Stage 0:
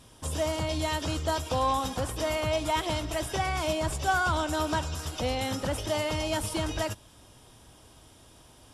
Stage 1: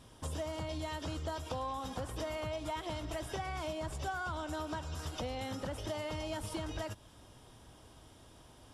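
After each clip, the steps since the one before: treble shelf 4.6 kHz -6.5 dB; compression, threshold -34 dBFS, peak gain reduction 12 dB; peaking EQ 2.5 kHz -2.5 dB 0.21 oct; trim -2 dB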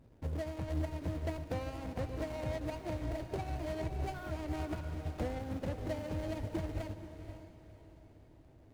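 median filter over 41 samples; on a send: echo that smears into a reverb 511 ms, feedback 43%, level -6.5 dB; on the sum: upward expansion 1.5:1, over -49 dBFS; trim +4.5 dB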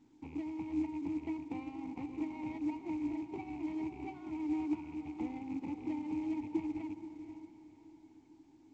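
rattle on loud lows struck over -38 dBFS, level -44 dBFS; vowel filter u; trim +9 dB; µ-law 128 kbps 16 kHz

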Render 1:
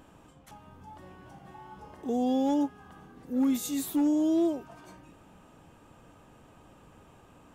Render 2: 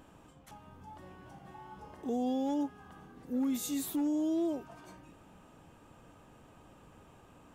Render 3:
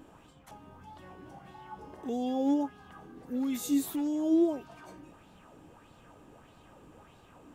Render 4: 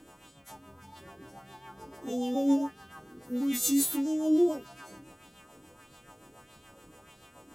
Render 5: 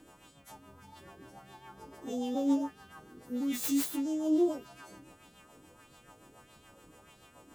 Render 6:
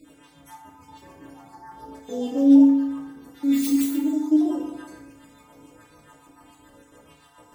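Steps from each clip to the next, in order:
peak limiter -24.5 dBFS, peak gain reduction 4.5 dB; trim -2 dB
sweeping bell 1.6 Hz 290–4300 Hz +9 dB
partials quantised in pitch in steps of 2 st; rotary cabinet horn 7 Hz; trim +3.5 dB
self-modulated delay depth 0.069 ms; trim -3 dB
random holes in the spectrogram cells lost 34%; FDN reverb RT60 1.1 s, low-frequency decay 0.95×, high-frequency decay 0.55×, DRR -1 dB; trim +2.5 dB

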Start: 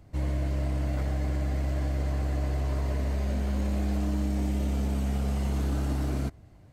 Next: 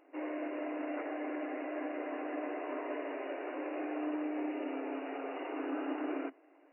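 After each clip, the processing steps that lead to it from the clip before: FFT band-pass 260–2900 Hz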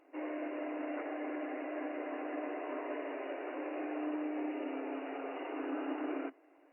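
trim -1 dB; Opus 48 kbps 48 kHz

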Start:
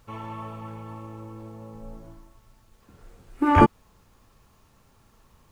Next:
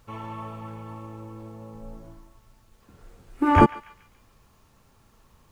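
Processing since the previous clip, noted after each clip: band-passed feedback delay 142 ms, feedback 46%, band-pass 2.8 kHz, level -15.5 dB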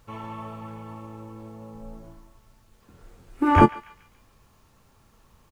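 doubling 23 ms -13.5 dB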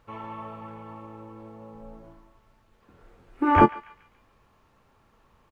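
tone controls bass -6 dB, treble -13 dB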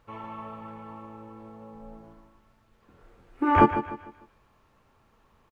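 feedback delay 150 ms, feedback 36%, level -11.5 dB; trim -1.5 dB

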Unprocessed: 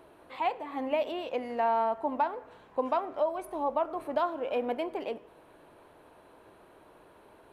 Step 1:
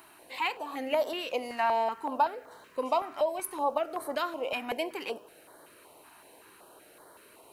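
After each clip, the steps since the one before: tilt EQ +3.5 dB/octave; band-stop 3.4 kHz, Q 8.9; step-sequenced notch 5.3 Hz 510–2600 Hz; trim +4.5 dB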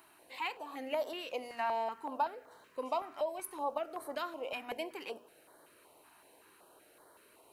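hum notches 60/120/180/240 Hz; trim -7 dB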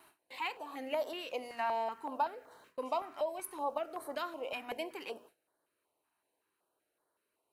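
gate with hold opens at -49 dBFS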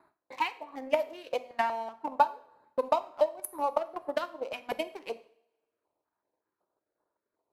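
local Wiener filter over 15 samples; transient shaper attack +11 dB, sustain -7 dB; two-slope reverb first 0.54 s, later 1.6 s, from -23 dB, DRR 12 dB

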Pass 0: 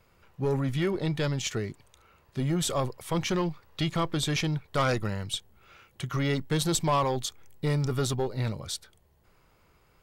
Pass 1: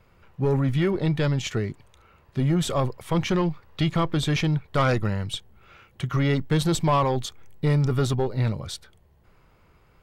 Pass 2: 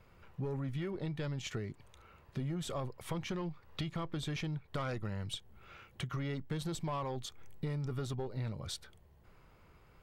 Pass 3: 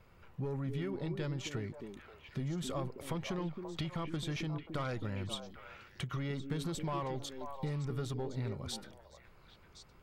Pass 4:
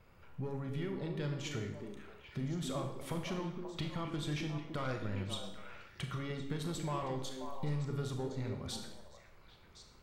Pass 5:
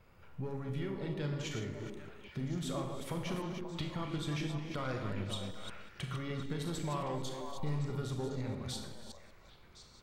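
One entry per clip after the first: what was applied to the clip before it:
tone controls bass +3 dB, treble -7 dB; trim +3.5 dB
compression 4:1, threshold -34 dBFS, peak gain reduction 13.5 dB; trim -3.5 dB
repeats whose band climbs or falls 266 ms, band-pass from 290 Hz, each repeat 1.4 oct, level -2.5 dB
Schroeder reverb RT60 0.7 s, combs from 27 ms, DRR 4.5 dB; trim -1.5 dB
chunks repeated in reverse 190 ms, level -7 dB

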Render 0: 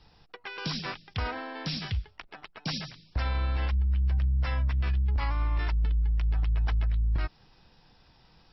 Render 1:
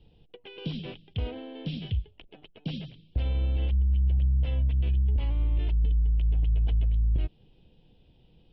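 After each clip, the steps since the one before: FFT filter 490 Hz 0 dB, 1.2 kHz -23 dB, 1.9 kHz -19 dB, 3.1 kHz -1 dB, 5.1 kHz -26 dB; trim +2 dB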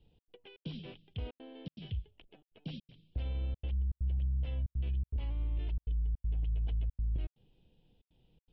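trance gate "xx.xxx.xxxxx" 161 bpm -60 dB; trim -8.5 dB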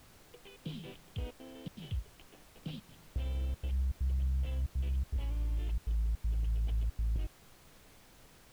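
added noise pink -59 dBFS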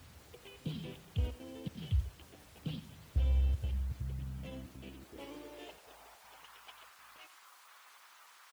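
coarse spectral quantiser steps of 15 dB; delay 88 ms -13.5 dB; high-pass sweep 72 Hz -> 1.1 kHz, 3.37–6.58 s; trim +1 dB

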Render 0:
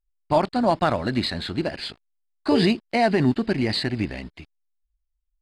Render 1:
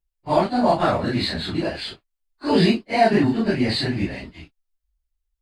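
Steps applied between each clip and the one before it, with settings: phase randomisation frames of 100 ms; trim +2 dB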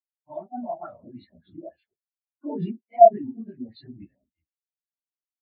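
recorder AGC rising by 8.5 dB/s; LFO low-pass sine 3.5 Hz 650–3700 Hz; spectral contrast expander 2.5:1; trim -1 dB

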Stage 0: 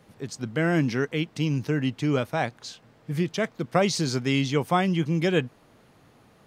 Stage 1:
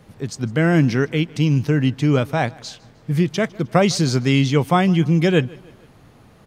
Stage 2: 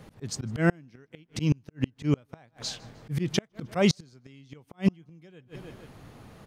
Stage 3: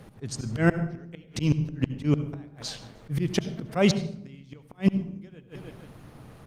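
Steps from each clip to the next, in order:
bass shelf 120 Hz +10.5 dB; feedback delay 154 ms, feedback 47%, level -24 dB; trim +5 dB
slow attack 162 ms; inverted gate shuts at -11 dBFS, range -35 dB
on a send at -12 dB: reverberation RT60 0.70 s, pre-delay 66 ms; on the sum: trim +1.5 dB; Opus 32 kbps 48 kHz

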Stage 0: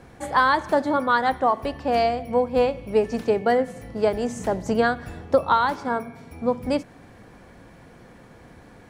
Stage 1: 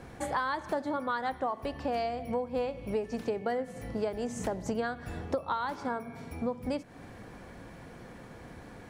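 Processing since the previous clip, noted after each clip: compression 4:1, threshold -31 dBFS, peak gain reduction 15 dB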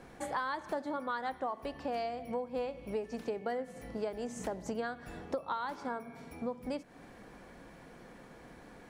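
peaking EQ 91 Hz -11.5 dB 0.92 oct; trim -4 dB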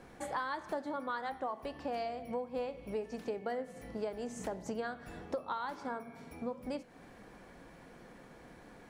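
flange 1.5 Hz, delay 9.1 ms, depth 3.3 ms, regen -86%; trim +3 dB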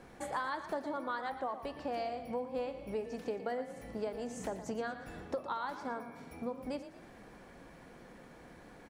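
frequency-shifting echo 116 ms, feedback 37%, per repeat +30 Hz, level -12 dB

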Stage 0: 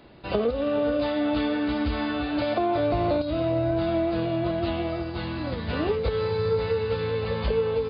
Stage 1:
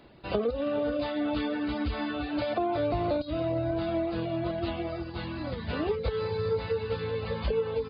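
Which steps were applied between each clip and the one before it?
reverb removal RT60 0.57 s; trim -3 dB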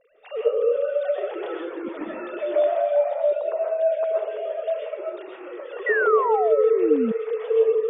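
formants replaced by sine waves; algorithmic reverb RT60 0.71 s, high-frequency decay 0.3×, pre-delay 90 ms, DRR -3 dB; painted sound fall, 5.86–7.12 s, 210–2000 Hz -25 dBFS; trim +1.5 dB

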